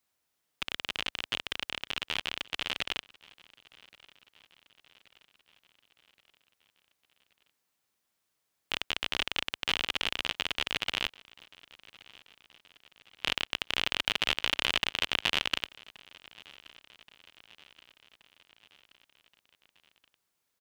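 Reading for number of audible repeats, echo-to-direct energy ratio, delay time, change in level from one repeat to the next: 3, -22.0 dB, 1.126 s, -4.5 dB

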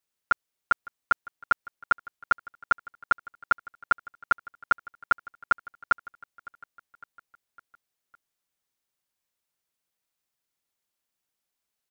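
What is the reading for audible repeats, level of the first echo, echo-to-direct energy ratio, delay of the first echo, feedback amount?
3, -21.0 dB, -19.5 dB, 0.557 s, 57%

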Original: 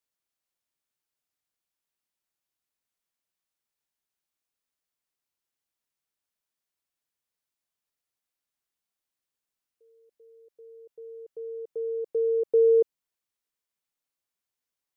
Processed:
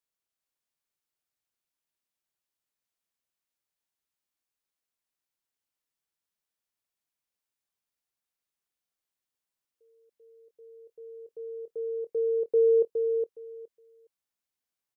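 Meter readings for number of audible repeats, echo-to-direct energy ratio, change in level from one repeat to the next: 2, -5.5 dB, -16.0 dB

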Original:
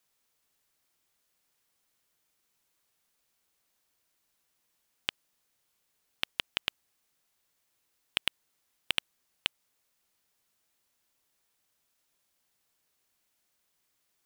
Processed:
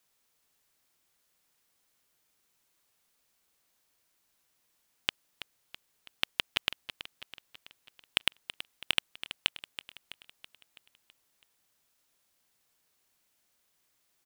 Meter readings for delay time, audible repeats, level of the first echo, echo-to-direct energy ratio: 0.328 s, 5, -13.0 dB, -11.5 dB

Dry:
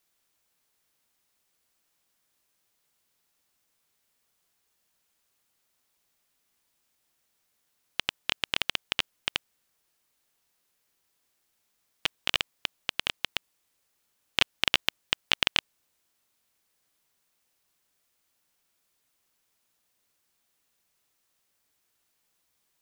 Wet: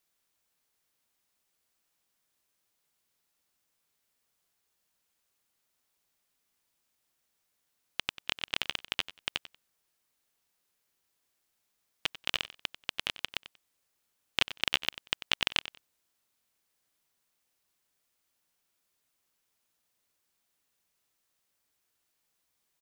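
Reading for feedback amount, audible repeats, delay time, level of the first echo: 19%, 2, 93 ms, -15.0 dB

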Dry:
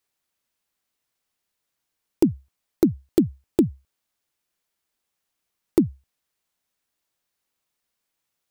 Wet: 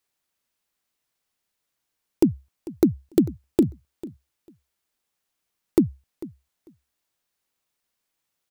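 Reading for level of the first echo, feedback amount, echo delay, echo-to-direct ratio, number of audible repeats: -18.0 dB, 15%, 0.446 s, -18.0 dB, 2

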